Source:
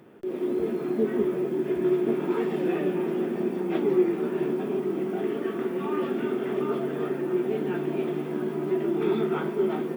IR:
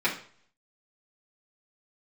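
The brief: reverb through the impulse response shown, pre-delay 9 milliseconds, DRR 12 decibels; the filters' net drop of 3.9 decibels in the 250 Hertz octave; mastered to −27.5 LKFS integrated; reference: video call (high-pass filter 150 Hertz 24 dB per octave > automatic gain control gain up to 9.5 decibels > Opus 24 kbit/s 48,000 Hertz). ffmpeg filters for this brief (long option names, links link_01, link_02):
-filter_complex "[0:a]equalizer=frequency=250:width_type=o:gain=-6.5,asplit=2[link_01][link_02];[1:a]atrim=start_sample=2205,adelay=9[link_03];[link_02][link_03]afir=irnorm=-1:irlink=0,volume=-24.5dB[link_04];[link_01][link_04]amix=inputs=2:normalize=0,highpass=frequency=150:width=0.5412,highpass=frequency=150:width=1.3066,dynaudnorm=maxgain=9.5dB,volume=2dB" -ar 48000 -c:a libopus -b:a 24k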